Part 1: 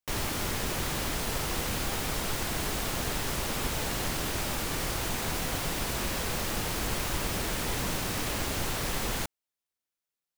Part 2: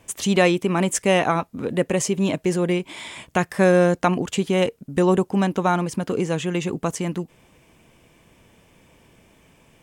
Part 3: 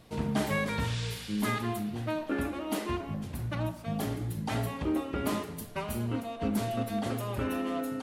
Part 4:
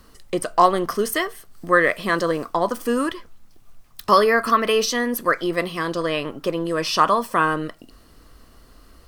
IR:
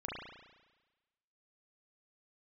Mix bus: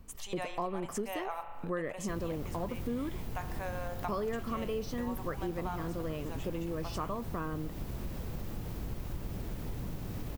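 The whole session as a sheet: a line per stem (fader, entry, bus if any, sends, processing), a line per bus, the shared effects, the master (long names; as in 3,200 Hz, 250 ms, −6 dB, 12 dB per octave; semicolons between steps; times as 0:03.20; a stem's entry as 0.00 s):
0.0 dB, 2.00 s, no send, no processing
+1.0 dB, 0.00 s, send −8.5 dB, Chebyshev high-pass filter 790 Hz, order 3
muted
−0.5 dB, 0.00 s, no send, no processing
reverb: on, RT60 1.2 s, pre-delay 34 ms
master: drawn EQ curve 140 Hz 0 dB, 1,600 Hz −17 dB, 9,700 Hz −20 dB, 15,000 Hz −11 dB; downward compressor 2.5 to 1, threshold −35 dBFS, peak gain reduction 10 dB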